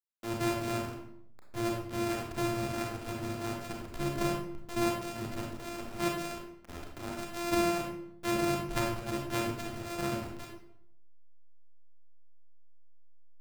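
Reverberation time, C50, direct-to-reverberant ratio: 0.75 s, 3.0 dB, -0.5 dB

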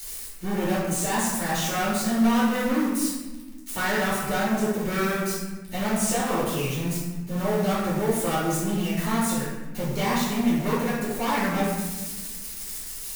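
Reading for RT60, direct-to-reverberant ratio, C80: 1.2 s, -10.0 dB, 2.5 dB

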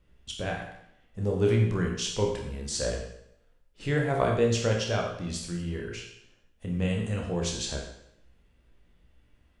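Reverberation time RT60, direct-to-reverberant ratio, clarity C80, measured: 0.75 s, -0.5 dB, 7.0 dB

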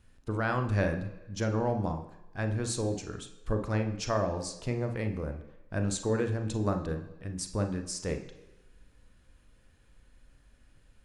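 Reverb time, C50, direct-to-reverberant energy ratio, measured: 1.1 s, 9.0 dB, 5.5 dB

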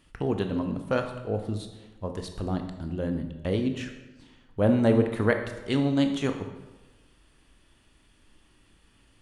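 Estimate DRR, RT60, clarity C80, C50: 5.5 dB, 1.1 s, 10.0 dB, 7.5 dB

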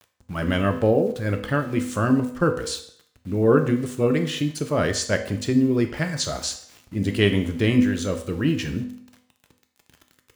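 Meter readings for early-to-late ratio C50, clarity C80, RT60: 10.0 dB, 13.5 dB, 0.65 s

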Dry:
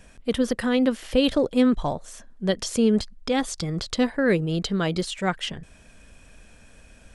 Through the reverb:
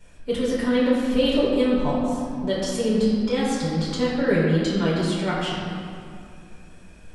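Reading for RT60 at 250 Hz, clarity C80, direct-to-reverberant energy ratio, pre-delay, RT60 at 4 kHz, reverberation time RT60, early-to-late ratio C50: 3.3 s, 0.0 dB, -8.5 dB, 7 ms, 1.4 s, 2.5 s, -1.0 dB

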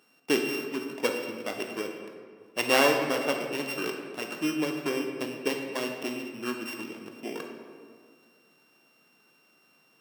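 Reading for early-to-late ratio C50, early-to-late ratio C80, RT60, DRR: 4.5 dB, 5.5 dB, 1.9 s, 2.5 dB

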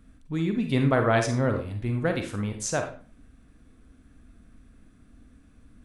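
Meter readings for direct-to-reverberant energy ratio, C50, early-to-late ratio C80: 5.0 dB, 7.5 dB, 13.0 dB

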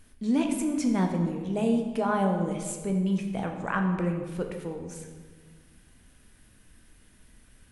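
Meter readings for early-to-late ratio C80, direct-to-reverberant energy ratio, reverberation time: 7.5 dB, 3.0 dB, 1.6 s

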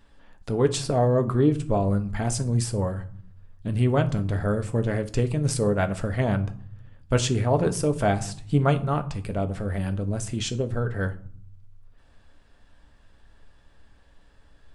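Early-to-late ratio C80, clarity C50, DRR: 21.0 dB, 16.0 dB, 7.0 dB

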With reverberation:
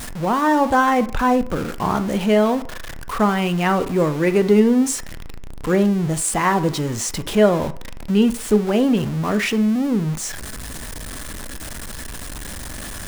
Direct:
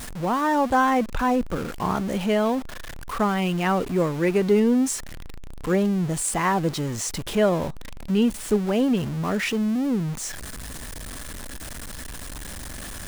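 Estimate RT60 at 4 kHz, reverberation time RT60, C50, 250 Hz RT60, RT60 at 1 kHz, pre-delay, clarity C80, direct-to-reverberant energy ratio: 0.60 s, 0.50 s, 16.5 dB, 0.40 s, 0.55 s, 10 ms, 20.5 dB, 11.0 dB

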